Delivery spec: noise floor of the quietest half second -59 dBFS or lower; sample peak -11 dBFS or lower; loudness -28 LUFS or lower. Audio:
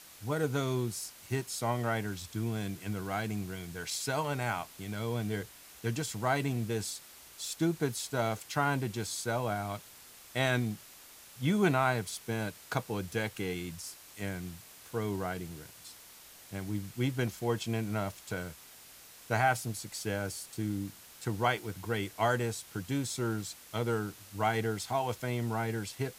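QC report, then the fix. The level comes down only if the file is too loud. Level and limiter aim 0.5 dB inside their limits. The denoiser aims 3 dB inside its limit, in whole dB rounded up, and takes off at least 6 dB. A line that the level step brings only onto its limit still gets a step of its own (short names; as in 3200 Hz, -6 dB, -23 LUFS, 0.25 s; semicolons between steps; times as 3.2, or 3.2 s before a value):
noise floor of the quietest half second -54 dBFS: fail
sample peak -14.0 dBFS: OK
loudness -34.0 LUFS: OK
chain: denoiser 8 dB, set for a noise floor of -54 dBFS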